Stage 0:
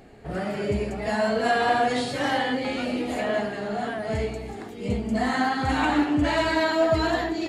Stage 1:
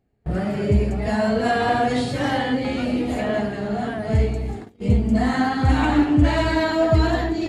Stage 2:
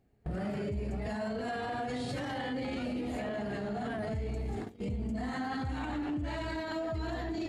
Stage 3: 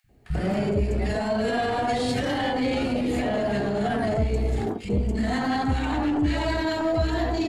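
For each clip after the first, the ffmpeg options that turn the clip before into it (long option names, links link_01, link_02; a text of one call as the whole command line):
ffmpeg -i in.wav -af "equalizer=frequency=68:width=0.33:gain=13,agate=range=-27dB:threshold=-30dB:ratio=16:detection=peak" out.wav
ffmpeg -i in.wav -af "acompressor=threshold=-24dB:ratio=6,alimiter=level_in=4.5dB:limit=-24dB:level=0:latency=1:release=41,volume=-4.5dB" out.wav
ffmpeg -i in.wav -filter_complex "[0:a]asplit=2[link_01][link_02];[link_02]aeval=exprs='clip(val(0),-1,0.0158)':channel_layout=same,volume=-5dB[link_03];[link_01][link_03]amix=inputs=2:normalize=0,acrossover=split=160|1400[link_04][link_05][link_06];[link_04]adelay=40[link_07];[link_05]adelay=90[link_08];[link_07][link_08][link_06]amix=inputs=3:normalize=0,volume=8.5dB" out.wav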